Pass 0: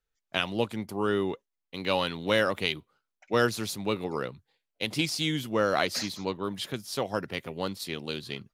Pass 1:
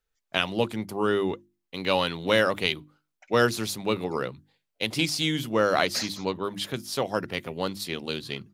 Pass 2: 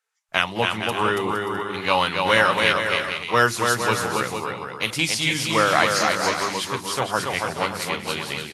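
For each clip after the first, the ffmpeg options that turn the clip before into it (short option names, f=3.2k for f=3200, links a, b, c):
-af "bandreject=f=50:t=h:w=6,bandreject=f=100:t=h:w=6,bandreject=f=150:t=h:w=6,bandreject=f=200:t=h:w=6,bandreject=f=250:t=h:w=6,bandreject=f=300:t=h:w=6,bandreject=f=350:t=h:w=6,volume=3dB"
-af "equalizer=f=250:t=o:w=1:g=-5,equalizer=f=500:t=o:w=1:g=-3,equalizer=f=1k:t=o:w=1:g=6,equalizer=f=2k:t=o:w=1:g=4,equalizer=f=4k:t=o:w=1:g=-3,equalizer=f=8k:t=o:w=1:g=4,aecho=1:1:280|462|580.3|657.2|707.2:0.631|0.398|0.251|0.158|0.1,volume=2.5dB" -ar 32000 -c:a libvorbis -b:a 32k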